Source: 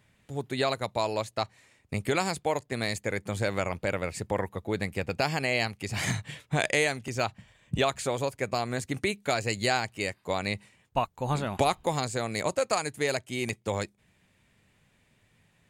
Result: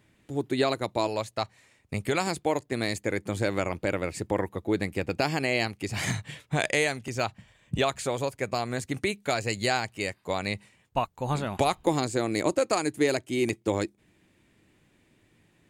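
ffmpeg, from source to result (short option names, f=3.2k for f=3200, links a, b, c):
-af "asetnsamples=n=441:p=0,asendcmd='1.07 equalizer g 0.5;2.27 equalizer g 8;5.89 equalizer g 1.5;11.87 equalizer g 13.5',equalizer=f=320:t=o:w=0.6:g=11"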